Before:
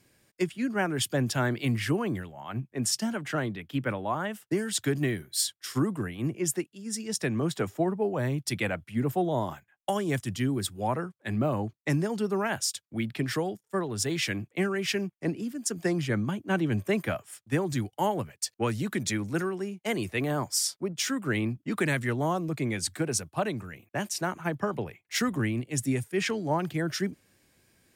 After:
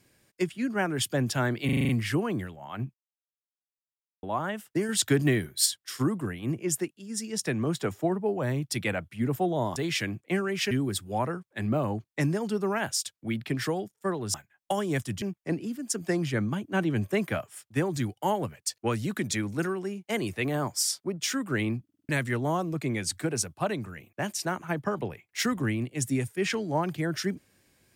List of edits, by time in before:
0:01.65: stutter 0.04 s, 7 plays
0:02.70–0:03.99: silence
0:04.65–0:05.42: clip gain +4 dB
0:09.52–0:10.40: swap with 0:14.03–0:14.98
0:21.60: stutter in place 0.05 s, 5 plays

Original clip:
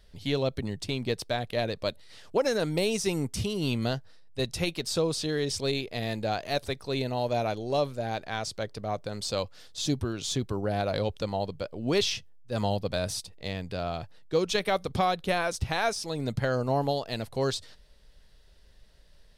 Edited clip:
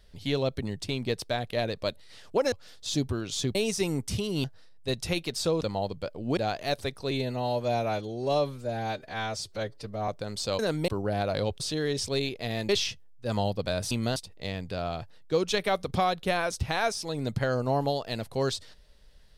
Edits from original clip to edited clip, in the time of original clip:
0:02.52–0:02.81: swap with 0:09.44–0:10.47
0:03.70–0:03.95: move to 0:13.17
0:05.12–0:06.21: swap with 0:11.19–0:11.95
0:06.95–0:08.93: time-stretch 1.5×

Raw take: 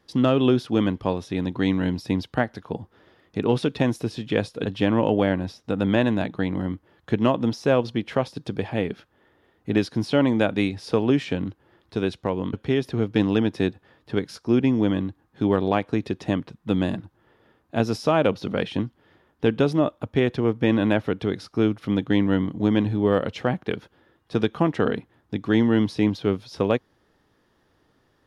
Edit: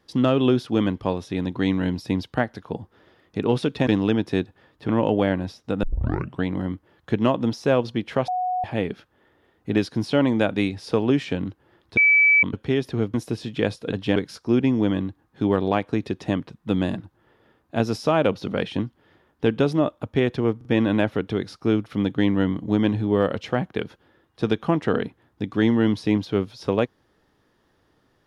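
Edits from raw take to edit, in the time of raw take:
0:03.87–0:04.89: swap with 0:13.14–0:14.16
0:05.83: tape start 0.61 s
0:08.28–0:08.64: beep over 733 Hz −21.5 dBFS
0:11.97–0:12.43: beep over 2,300 Hz −12.5 dBFS
0:20.57: stutter 0.04 s, 3 plays

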